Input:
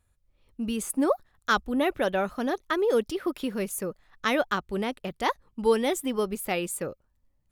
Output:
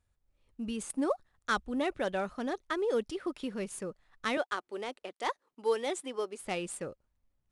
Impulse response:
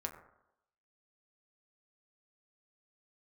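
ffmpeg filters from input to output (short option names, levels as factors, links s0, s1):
-filter_complex "[0:a]asettb=1/sr,asplit=3[s0][s1][s2];[s0]atrim=end=4.374[s3];[s1]atrim=start=4.37:end=6.42,asetpts=PTS-STARTPTS,afade=t=in:d=0.004:c=qsin,afade=t=out:st=2.046:d=0.004:c=qsin,highpass=f=310:w=0.5412,highpass=f=310:w=1.3066[s4];[s2]atrim=start=6.416[s5];[s3][s4]acrossfade=d=0.004:c1=hsin:c2=qsin[s6];[s6][s5]acrossfade=d=0.004:c1=qsin:c2=hsin,volume=0.473" -ar 22050 -c:a adpcm_ima_wav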